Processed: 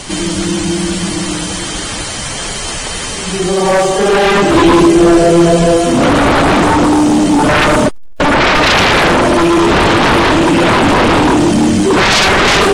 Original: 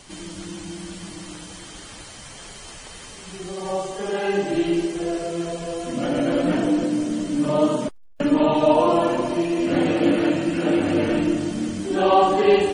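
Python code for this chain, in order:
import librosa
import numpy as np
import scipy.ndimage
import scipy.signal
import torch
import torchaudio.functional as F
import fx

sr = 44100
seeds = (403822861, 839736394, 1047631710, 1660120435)

y = fx.fold_sine(x, sr, drive_db=18, ceiling_db=-4.0)
y = fx.low_shelf(y, sr, hz=430.0, db=5.5, at=(4.55, 5.77))
y = y * 10.0 ** (-2.0 / 20.0)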